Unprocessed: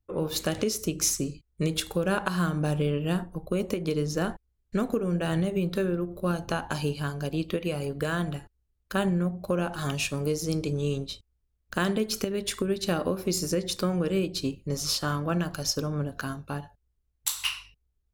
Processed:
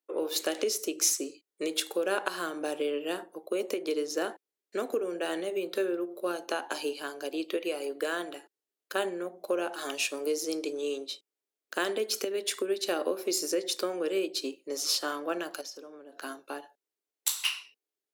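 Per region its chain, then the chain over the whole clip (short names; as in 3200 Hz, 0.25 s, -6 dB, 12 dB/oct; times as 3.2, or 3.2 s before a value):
15.61–16.22 high shelf 5800 Hz -7 dB + compressor 16:1, threshold -37 dBFS
whole clip: steep high-pass 310 Hz 36 dB/oct; bell 1100 Hz -4 dB 0.91 oct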